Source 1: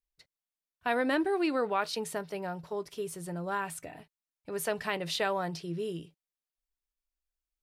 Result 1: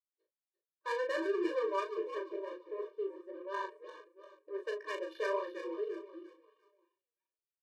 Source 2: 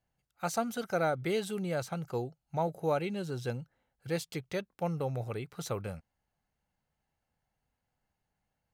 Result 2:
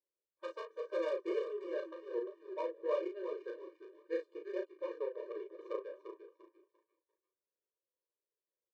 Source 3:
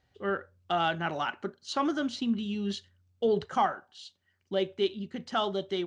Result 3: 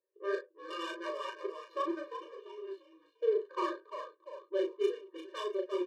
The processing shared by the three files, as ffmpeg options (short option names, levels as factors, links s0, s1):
-filter_complex "[0:a]flanger=delay=9.1:depth=9.5:regen=-9:speed=2:shape=sinusoidal,adynamicsmooth=sensitivity=3.5:basefreq=610,asplit=2[s0][s1];[s1]adelay=36,volume=0.562[s2];[s0][s2]amix=inputs=2:normalize=0,asplit=5[s3][s4][s5][s6][s7];[s4]adelay=346,afreqshift=-94,volume=0.376[s8];[s5]adelay=692,afreqshift=-188,volume=0.14[s9];[s6]adelay=1038,afreqshift=-282,volume=0.0513[s10];[s7]adelay=1384,afreqshift=-376,volume=0.0191[s11];[s3][s8][s9][s10][s11]amix=inputs=5:normalize=0,afftfilt=real='re*eq(mod(floor(b*sr/1024/310),2),1)':imag='im*eq(mod(floor(b*sr/1024/310),2),1)':win_size=1024:overlap=0.75"